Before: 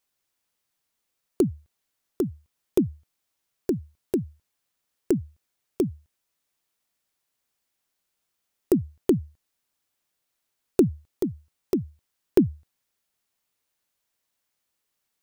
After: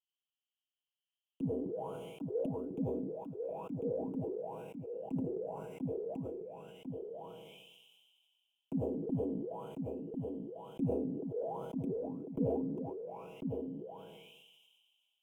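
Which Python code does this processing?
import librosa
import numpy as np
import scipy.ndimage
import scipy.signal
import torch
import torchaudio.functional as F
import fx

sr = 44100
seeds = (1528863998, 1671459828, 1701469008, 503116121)

y = fx.spec_trails(x, sr, decay_s=1.18)
y = fx.auto_wah(y, sr, base_hz=260.0, top_hz=3100.0, q=13.0, full_db=-20.5, direction='down')
y = scipy.signal.sosfilt(scipy.signal.cheby1(2, 1.0, [1100.0, 2900.0], 'bandstop', fs=sr, output='sos'), y)
y = fx.peak_eq(y, sr, hz=4900.0, db=-8.0, octaves=2.1)
y = fx.fixed_phaser(y, sr, hz=1200.0, stages=6)
y = y + 0.62 * np.pad(y, (int(6.2 * sr / 1000.0), 0))[:len(y)]
y = y + 10.0 ** (-5.0 / 20.0) * np.pad(y, (int(1047 * sr / 1000.0), 0))[:len(y)]
y = fx.sustainer(y, sr, db_per_s=28.0)
y = y * 10.0 ** (6.0 / 20.0)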